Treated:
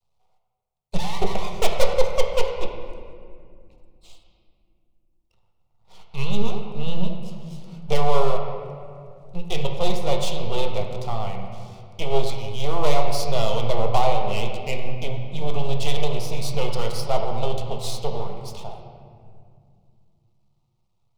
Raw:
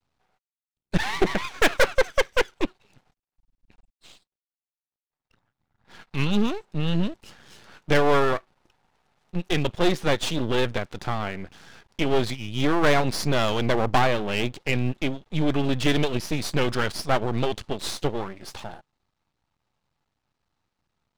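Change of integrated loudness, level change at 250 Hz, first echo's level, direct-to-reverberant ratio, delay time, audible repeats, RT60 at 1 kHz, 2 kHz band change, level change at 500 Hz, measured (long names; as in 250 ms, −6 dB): −2.0 dB, −7.0 dB, no echo audible, 2.0 dB, no echo audible, no echo audible, 2.0 s, −9.5 dB, 0.0 dB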